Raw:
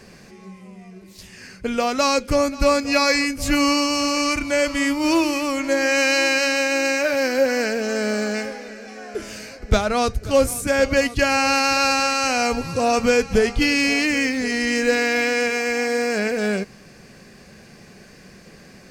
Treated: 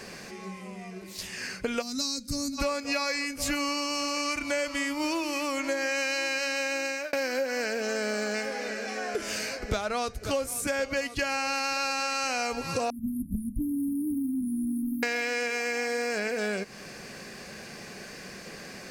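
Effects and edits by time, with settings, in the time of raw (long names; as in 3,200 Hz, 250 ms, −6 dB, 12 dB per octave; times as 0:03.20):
0:01.82–0:02.58: gain on a spectral selection 290–3,600 Hz −21 dB
0:06.68–0:07.13: fade out
0:12.90–0:15.03: linear-phase brick-wall band-stop 310–9,600 Hz
whole clip: low-shelf EQ 240 Hz −11 dB; downward compressor 6 to 1, threshold −33 dBFS; level +5.5 dB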